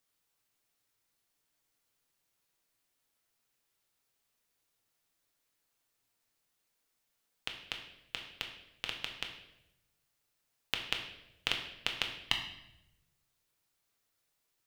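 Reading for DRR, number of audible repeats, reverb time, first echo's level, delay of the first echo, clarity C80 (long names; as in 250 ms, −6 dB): 2.0 dB, no echo audible, 0.85 s, no echo audible, no echo audible, 9.0 dB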